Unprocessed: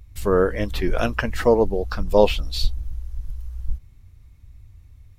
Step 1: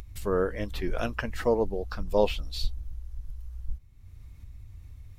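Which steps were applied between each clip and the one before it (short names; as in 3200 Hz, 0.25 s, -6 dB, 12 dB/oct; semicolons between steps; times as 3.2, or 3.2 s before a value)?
upward compressor, threshold -26 dBFS; gain -8 dB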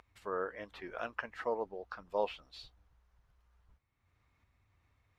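band-pass 1200 Hz, Q 0.93; gain -4 dB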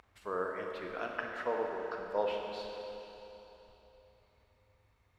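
Schroeder reverb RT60 3.5 s, combs from 29 ms, DRR 1 dB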